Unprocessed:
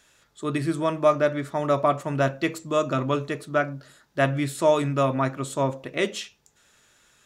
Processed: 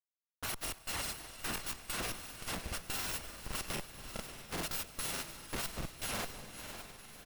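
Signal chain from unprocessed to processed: bit-reversed sample order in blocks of 256 samples; pre-emphasis filter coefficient 0.97; band-stop 5.5 kHz, Q 11; saturation -19.5 dBFS, distortion -9 dB; chord resonator F2 sus4, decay 0.65 s; trance gate "x....xx.x..xx" 190 bpm -60 dB; Schmitt trigger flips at -44.5 dBFS; echo that smears into a reverb 585 ms, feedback 47%, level -8 dB; granulator, spray 35 ms, pitch spread up and down by 0 st; delay 242 ms -21 dB; reverberation RT60 2.7 s, pre-delay 105 ms, DRR 18 dB; trim +11 dB

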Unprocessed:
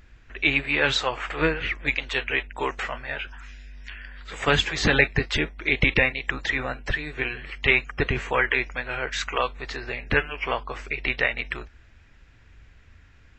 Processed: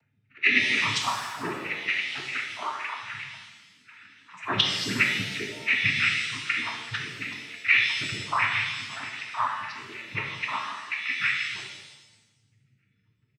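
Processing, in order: comb filter that takes the minimum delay 0.93 ms; delay 313 ms -22 dB; loudest bins only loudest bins 8; tilt EQ +2 dB/octave; noise-vocoded speech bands 12; pitch-shifted reverb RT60 1.1 s, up +7 st, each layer -8 dB, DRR 0.5 dB

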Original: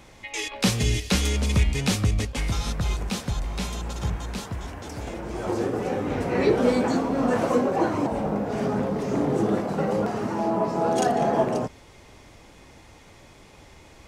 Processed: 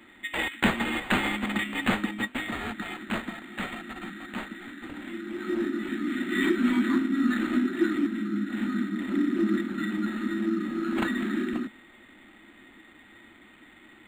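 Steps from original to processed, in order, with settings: Chebyshev high-pass 210 Hz, order 5; dynamic bell 3.9 kHz, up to +4 dB, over -44 dBFS, Q 1.7; brick-wall FIR band-stop 370–1200 Hz; small resonant body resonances 550/1900 Hz, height 15 dB, ringing for 45 ms; decimation joined by straight lines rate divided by 8×; trim +1.5 dB

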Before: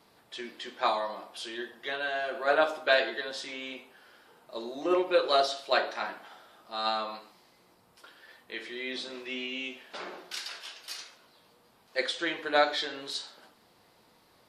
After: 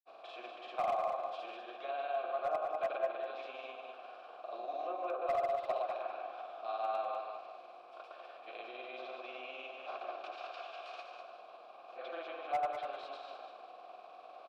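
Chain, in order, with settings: spectral levelling over time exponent 0.6; low-pass that closes with the level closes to 1.5 kHz, closed at -18.5 dBFS; in parallel at -2 dB: compression 10:1, threshold -31 dBFS, peak gain reduction 14 dB; on the sum: granulator 100 ms, grains 20 per s, spray 100 ms, pitch spread up and down by 0 st; vowel filter a; hard clipper -23 dBFS, distortion -19 dB; on a send: feedback delay 197 ms, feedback 28%, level -6.5 dB; on the sum: trim -5 dB

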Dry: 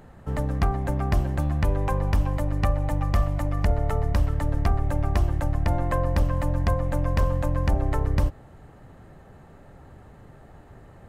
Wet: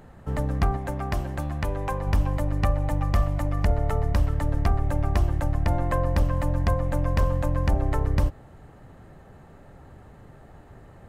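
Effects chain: 0.77–2.07 s: bass shelf 330 Hz -6 dB

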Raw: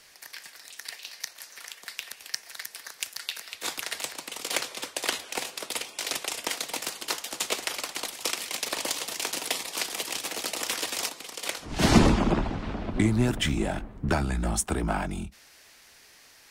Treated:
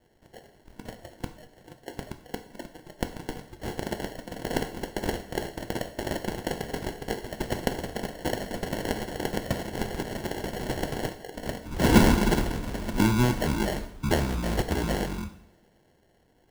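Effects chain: sample-and-hold 36×; spectral noise reduction 10 dB; two-slope reverb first 0.63 s, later 1.7 s, from -18 dB, DRR 7.5 dB

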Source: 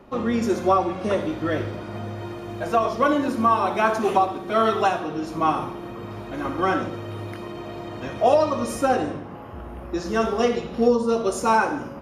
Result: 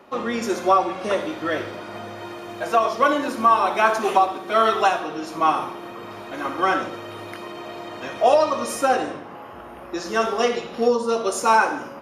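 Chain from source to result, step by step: high-pass 650 Hz 6 dB/octave; trim +4.5 dB

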